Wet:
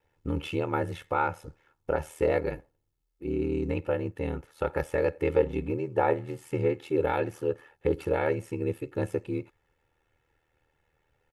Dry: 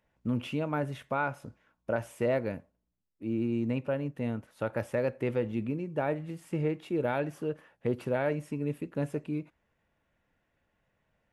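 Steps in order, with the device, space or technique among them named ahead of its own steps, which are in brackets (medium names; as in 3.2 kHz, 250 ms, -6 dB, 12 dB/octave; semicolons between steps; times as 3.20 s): 5.35–6.40 s: peaking EQ 790 Hz +4.5 dB 1.6 oct; ring-modulated robot voice (ring modulator 39 Hz; comb 2.3 ms, depth 69%); trim +4.5 dB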